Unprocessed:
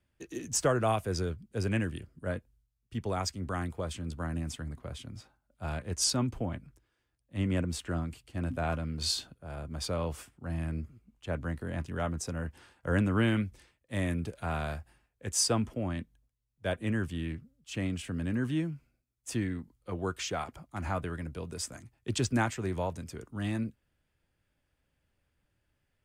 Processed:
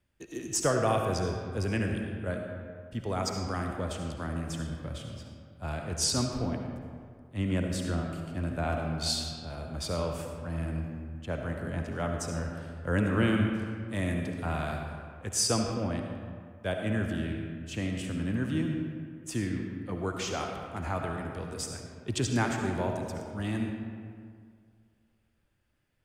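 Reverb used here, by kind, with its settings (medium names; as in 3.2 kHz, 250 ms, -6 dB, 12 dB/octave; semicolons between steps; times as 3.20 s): algorithmic reverb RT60 2.1 s, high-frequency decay 0.55×, pre-delay 30 ms, DRR 2.5 dB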